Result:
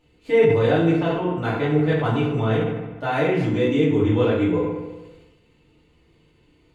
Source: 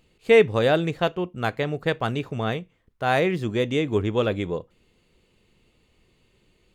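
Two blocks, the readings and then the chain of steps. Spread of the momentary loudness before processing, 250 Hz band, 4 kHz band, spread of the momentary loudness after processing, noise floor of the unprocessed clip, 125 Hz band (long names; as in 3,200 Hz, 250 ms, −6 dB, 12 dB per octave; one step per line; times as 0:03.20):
11 LU, +6.5 dB, −2.5 dB, 9 LU, −65 dBFS, +6.0 dB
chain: brickwall limiter −16 dBFS, peak gain reduction 10 dB
high-shelf EQ 7,000 Hz −9.5 dB
on a send: delay with a band-pass on its return 64 ms, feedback 64%, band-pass 1,200 Hz, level −8 dB
on the sum: feedback delay network reverb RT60 0.8 s, low-frequency decay 1.25×, high-frequency decay 0.65×, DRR −9 dB
level that may fall only so fast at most 48 dB per second
level −6 dB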